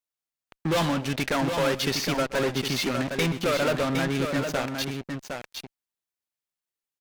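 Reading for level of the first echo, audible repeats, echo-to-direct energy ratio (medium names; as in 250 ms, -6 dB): -17.5 dB, 2, -5.5 dB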